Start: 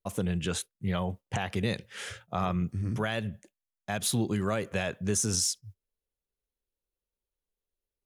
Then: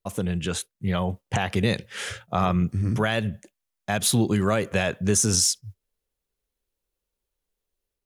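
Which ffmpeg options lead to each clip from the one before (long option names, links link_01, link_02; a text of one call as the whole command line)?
ffmpeg -i in.wav -af "dynaudnorm=framelen=660:gausssize=3:maxgain=4dB,volume=3dB" out.wav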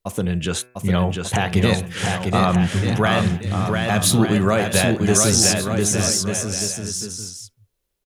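ffmpeg -i in.wav -filter_complex "[0:a]bandreject=frequency=124.4:width_type=h:width=4,bandreject=frequency=248.8:width_type=h:width=4,bandreject=frequency=373.2:width_type=h:width=4,bandreject=frequency=497.6:width_type=h:width=4,bandreject=frequency=622:width_type=h:width=4,bandreject=frequency=746.4:width_type=h:width=4,bandreject=frequency=870.8:width_type=h:width=4,bandreject=frequency=995.2:width_type=h:width=4,bandreject=frequency=1119.6:width_type=h:width=4,bandreject=frequency=1244:width_type=h:width=4,bandreject=frequency=1368.4:width_type=h:width=4,bandreject=frequency=1492.8:width_type=h:width=4,bandreject=frequency=1617.2:width_type=h:width=4,bandreject=frequency=1741.6:width_type=h:width=4,bandreject=frequency=1866:width_type=h:width=4,bandreject=frequency=1990.4:width_type=h:width=4,bandreject=frequency=2114.8:width_type=h:width=4,bandreject=frequency=2239.2:width_type=h:width=4,bandreject=frequency=2363.6:width_type=h:width=4,bandreject=frequency=2488:width_type=h:width=4,bandreject=frequency=2612.4:width_type=h:width=4,asplit=2[link_01][link_02];[link_02]aecho=0:1:700|1190|1533|1773|1941:0.631|0.398|0.251|0.158|0.1[link_03];[link_01][link_03]amix=inputs=2:normalize=0,volume=4.5dB" out.wav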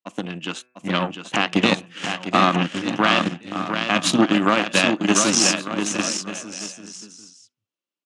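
ffmpeg -i in.wav -af "aeval=exprs='0.75*(cos(1*acos(clip(val(0)/0.75,-1,1)))-cos(1*PI/2))+0.0473*(cos(3*acos(clip(val(0)/0.75,-1,1)))-cos(3*PI/2))+0.0668*(cos(7*acos(clip(val(0)/0.75,-1,1)))-cos(7*PI/2))':channel_layout=same,highpass=frequency=180:width=0.5412,highpass=frequency=180:width=1.3066,equalizer=frequency=300:width_type=q:width=4:gain=9,equalizer=frequency=420:width_type=q:width=4:gain=-8,equalizer=frequency=1200:width_type=q:width=4:gain=5,equalizer=frequency=2800:width_type=q:width=4:gain=8,lowpass=frequency=7600:width=0.5412,lowpass=frequency=7600:width=1.3066,volume=2dB" out.wav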